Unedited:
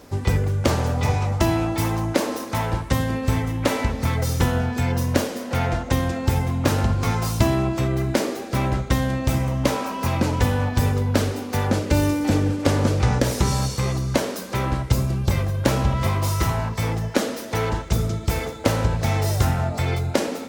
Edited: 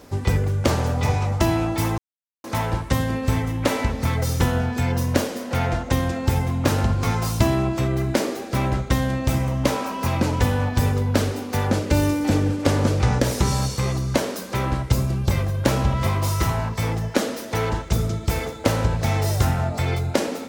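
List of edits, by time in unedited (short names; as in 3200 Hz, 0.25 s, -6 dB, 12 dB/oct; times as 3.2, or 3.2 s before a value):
1.98–2.44 mute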